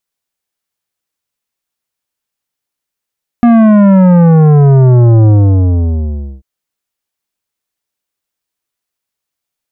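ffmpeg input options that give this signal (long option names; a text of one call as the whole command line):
ffmpeg -f lavfi -i "aevalsrc='0.631*clip((2.99-t)/1.15,0,1)*tanh(3.98*sin(2*PI*240*2.99/log(65/240)*(exp(log(65/240)*t/2.99)-1)))/tanh(3.98)':duration=2.99:sample_rate=44100" out.wav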